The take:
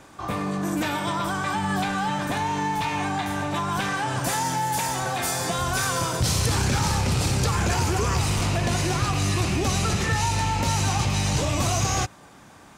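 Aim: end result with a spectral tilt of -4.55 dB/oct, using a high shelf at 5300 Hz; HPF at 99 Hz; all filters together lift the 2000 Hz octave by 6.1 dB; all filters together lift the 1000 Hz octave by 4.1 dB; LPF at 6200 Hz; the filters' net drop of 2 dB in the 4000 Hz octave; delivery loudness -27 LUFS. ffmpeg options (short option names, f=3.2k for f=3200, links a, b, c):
-af "highpass=99,lowpass=6.2k,equalizer=f=1k:t=o:g=3.5,equalizer=f=2k:t=o:g=8,equalizer=f=4k:t=o:g=-3,highshelf=f=5.3k:g=-4,volume=-4dB"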